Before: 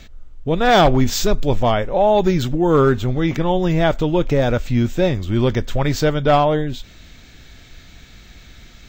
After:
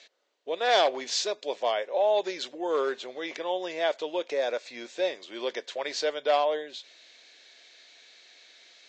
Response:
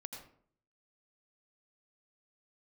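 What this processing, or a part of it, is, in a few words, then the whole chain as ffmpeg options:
phone speaker on a table: -filter_complex "[0:a]asettb=1/sr,asplit=3[link_01][link_02][link_03];[link_01]atrim=end=4.324[link_04];[link_02]atrim=start=4.32:end=4.93,asetpts=PTS-STARTPTS,afade=type=in:duration=0.004:curve=qsin,afade=type=out:start_time=0.606:duration=0.004:curve=qsin,bandreject=frequency=3000:width=7.2[link_05];[link_03]atrim=start=4.926[link_06];[link_04][link_05]acrossfade=duration=0.004:curve1=hsin:curve2=qsin[link_07];[link_07][link_06]acrossfade=duration=0.004:curve1=qsin:curve2=hsin,highpass=frequency=470:width=0.5412,highpass=frequency=470:width=1.3066,equalizer=frequency=830:width_type=q:width=4:gain=-5,equalizer=frequency=1300:width_type=q:width=4:gain=-9,equalizer=frequency=4300:width_type=q:width=4:gain=5,lowpass=frequency=7200:width=0.5412,lowpass=frequency=7200:width=1.3066,volume=-6.5dB"

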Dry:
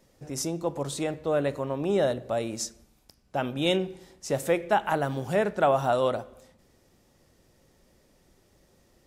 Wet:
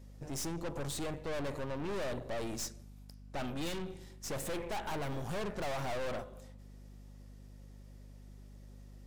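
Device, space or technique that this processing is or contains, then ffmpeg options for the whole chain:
valve amplifier with mains hum: -filter_complex "[0:a]aeval=exprs='(tanh(70.8*val(0)+0.7)-tanh(0.7))/70.8':channel_layout=same,aeval=exprs='val(0)+0.00251*(sin(2*PI*50*n/s)+sin(2*PI*2*50*n/s)/2+sin(2*PI*3*50*n/s)/3+sin(2*PI*4*50*n/s)/4+sin(2*PI*5*50*n/s)/5)':channel_layout=same,asettb=1/sr,asplit=3[link_01][link_02][link_03];[link_01]atrim=end=3.694[link_04];[link_02]atrim=start=3.69:end=4.27,asetpts=PTS-STARTPTS,afade=type=in:duration=0.004:curve=qsin,afade=type=out:start_time=0.576:duration=0.004:curve=qsin,equalizer=frequency=640:width=0.9:gain=-5[link_05];[link_03]atrim=start=4.266[link_06];[link_04][link_05]acrossfade=duration=0.004:curve1=hsin:curve2=qsin[link_07];[link_07][link_06]acrossfade=duration=0.004:curve1=qsin:curve2=hsin,volume=1dB"

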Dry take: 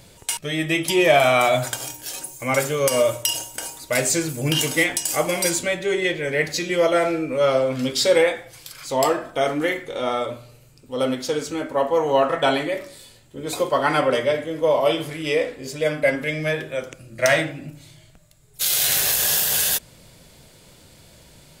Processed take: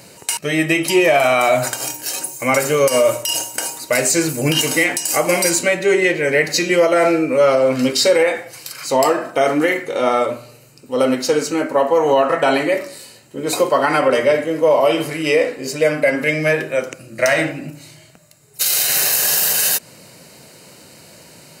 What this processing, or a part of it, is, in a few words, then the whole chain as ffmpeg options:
PA system with an anti-feedback notch: -af "highpass=170,asuperstop=centerf=3400:order=4:qfactor=6.7,alimiter=limit=-13dB:level=0:latency=1:release=113,volume=8dB"

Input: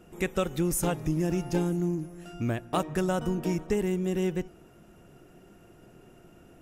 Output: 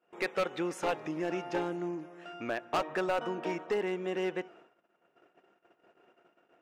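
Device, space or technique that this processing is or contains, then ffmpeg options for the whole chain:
walkie-talkie: -af "highpass=550,lowpass=2700,asoftclip=type=hard:threshold=-29dB,agate=range=-24dB:threshold=-59dB:ratio=16:detection=peak,volume=4.5dB"

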